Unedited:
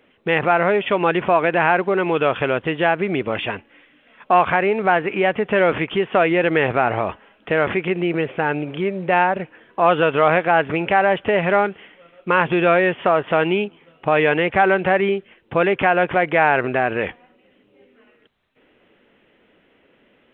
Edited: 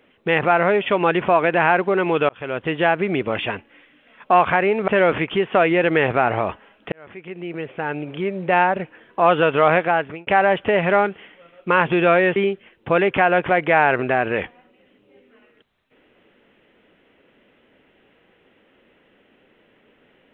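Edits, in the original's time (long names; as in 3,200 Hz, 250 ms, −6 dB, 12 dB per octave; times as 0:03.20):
0:02.29–0:02.74: fade in
0:04.88–0:05.48: remove
0:07.52–0:09.19: fade in
0:10.41–0:10.87: fade out
0:12.96–0:15.01: remove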